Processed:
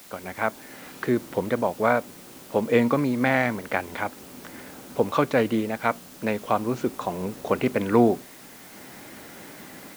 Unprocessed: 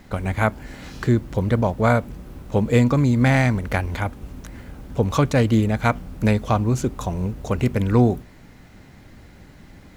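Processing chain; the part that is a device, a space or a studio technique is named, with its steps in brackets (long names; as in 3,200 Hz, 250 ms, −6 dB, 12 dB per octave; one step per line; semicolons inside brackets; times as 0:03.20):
dictaphone (band-pass filter 290–3,100 Hz; automatic gain control gain up to 13.5 dB; tape wow and flutter; white noise bed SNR 22 dB)
level −5.5 dB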